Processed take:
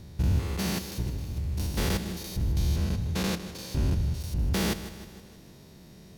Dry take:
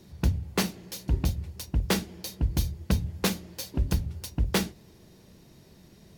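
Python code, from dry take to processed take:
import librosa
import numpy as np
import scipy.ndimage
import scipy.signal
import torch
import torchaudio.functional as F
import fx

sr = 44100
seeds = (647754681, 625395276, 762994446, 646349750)

y = fx.spec_steps(x, sr, hold_ms=200)
y = fx.over_compress(y, sr, threshold_db=-34.0, ratio=-0.5, at=(1.01, 1.67))
y = fx.high_shelf(y, sr, hz=11000.0, db=-10.0, at=(2.48, 4.21))
y = fx.echo_feedback(y, sr, ms=156, feedback_pct=55, wet_db=-13)
y = F.gain(torch.from_numpy(y), 4.5).numpy()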